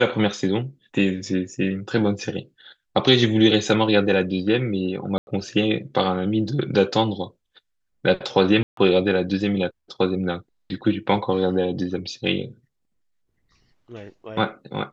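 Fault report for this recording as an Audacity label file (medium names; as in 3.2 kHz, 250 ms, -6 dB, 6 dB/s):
5.180000	5.270000	dropout 91 ms
8.630000	8.770000	dropout 143 ms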